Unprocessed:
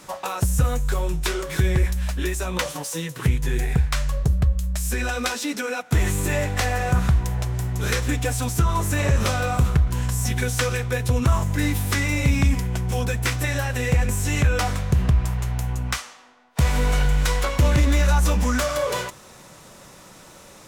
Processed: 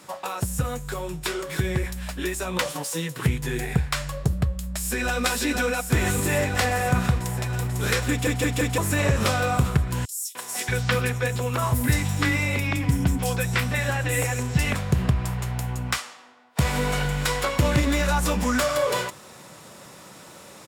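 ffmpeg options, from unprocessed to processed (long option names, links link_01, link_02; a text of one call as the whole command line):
ffmpeg -i in.wav -filter_complex "[0:a]asplit=2[link_01][link_02];[link_02]afade=type=in:start_time=4.56:duration=0.01,afade=type=out:start_time=5.22:duration=0.01,aecho=0:1:490|980|1470|1960|2450|2940|3430|3920|4410|4900|5390|5880:0.668344|0.534675|0.42774|0.342192|0.273754|0.219003|0.175202|0.140162|0.11213|0.0897036|0.0717629|0.0574103[link_03];[link_01][link_03]amix=inputs=2:normalize=0,asettb=1/sr,asplit=3[link_04][link_05][link_06];[link_04]atrim=end=10.054[link_07];[link_05]atrim=start=10.05:end=14.75,asetpts=PTS-STARTPTS,afade=type=in:duration=0.004:curve=qsin,afade=type=out:start_time=4.696:duration=0.004:curve=qsin,acrossover=split=340|5100[link_08][link_09][link_10];[link_09]adelay=300[link_11];[link_08]adelay=630[link_12];[link_12][link_11][link_10]amix=inputs=3:normalize=0,atrim=end_sample=207270[link_13];[link_06]atrim=start=14.746[link_14];[link_07][link_13]acrossfade=duration=0.004:curve1=hsin:curve2=qsin[link_15];[link_15][link_14]acrossfade=duration=0.004:curve1=qsin:curve2=hsin,asplit=5[link_16][link_17][link_18][link_19][link_20];[link_16]atrim=end=8.272[link_21];[link_17]atrim=start=8.098:end=8.272[link_22];[link_18]atrim=start=8.098:end=8.272[link_23];[link_19]atrim=start=8.098:end=8.272[link_24];[link_20]atrim=start=8.778[link_25];[link_21][link_22]acrossfade=duration=0.004:curve1=hsin:curve2=hsin[link_26];[link_26][link_23]acrossfade=duration=0.004:curve1=hsin:curve2=hsin[link_27];[link_27][link_24]acrossfade=duration=0.004:curve1=hsin:curve2=hsin[link_28];[link_28][link_25]acrossfade=duration=0.004:curve1=hsin:curve2=hsin,highpass=100,bandreject=frequency=6100:width=12,dynaudnorm=framelen=410:gausssize=11:maxgain=4dB,volume=-2.5dB" out.wav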